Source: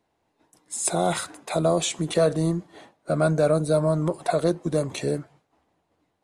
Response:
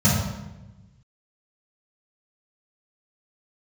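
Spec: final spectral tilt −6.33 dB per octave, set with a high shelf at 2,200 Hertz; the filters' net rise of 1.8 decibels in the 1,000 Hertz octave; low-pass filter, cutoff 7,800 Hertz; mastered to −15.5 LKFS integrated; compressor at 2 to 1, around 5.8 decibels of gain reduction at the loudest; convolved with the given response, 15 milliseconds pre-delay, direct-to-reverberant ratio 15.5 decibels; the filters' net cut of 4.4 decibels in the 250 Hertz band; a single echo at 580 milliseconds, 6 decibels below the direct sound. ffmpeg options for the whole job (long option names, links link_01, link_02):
-filter_complex "[0:a]lowpass=7800,equalizer=frequency=250:width_type=o:gain=-8.5,equalizer=frequency=1000:width_type=o:gain=5,highshelf=frequency=2200:gain=-6,acompressor=threshold=-27dB:ratio=2,aecho=1:1:580:0.501,asplit=2[link_01][link_02];[1:a]atrim=start_sample=2205,adelay=15[link_03];[link_02][link_03]afir=irnorm=-1:irlink=0,volume=-32.5dB[link_04];[link_01][link_04]amix=inputs=2:normalize=0,volume=12.5dB"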